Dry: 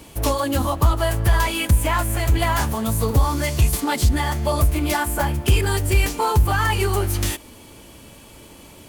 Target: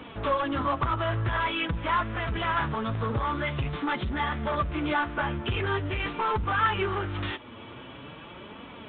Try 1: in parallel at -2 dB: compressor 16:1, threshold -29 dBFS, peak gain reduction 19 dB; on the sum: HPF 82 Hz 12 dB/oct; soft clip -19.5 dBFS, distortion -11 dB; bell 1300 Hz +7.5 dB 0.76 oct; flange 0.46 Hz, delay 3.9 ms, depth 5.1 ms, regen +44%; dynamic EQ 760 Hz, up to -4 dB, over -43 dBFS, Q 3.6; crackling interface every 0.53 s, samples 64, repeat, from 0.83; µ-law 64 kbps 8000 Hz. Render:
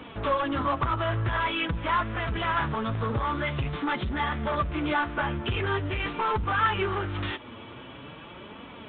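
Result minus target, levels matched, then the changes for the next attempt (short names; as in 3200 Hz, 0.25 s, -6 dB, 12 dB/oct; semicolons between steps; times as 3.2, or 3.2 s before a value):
compressor: peak gain reduction -7.5 dB
change: compressor 16:1, threshold -37 dBFS, peak gain reduction 26.5 dB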